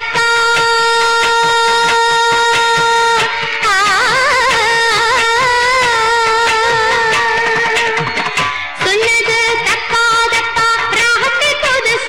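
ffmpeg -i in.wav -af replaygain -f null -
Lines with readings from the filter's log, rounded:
track_gain = -5.7 dB
track_peak = 0.252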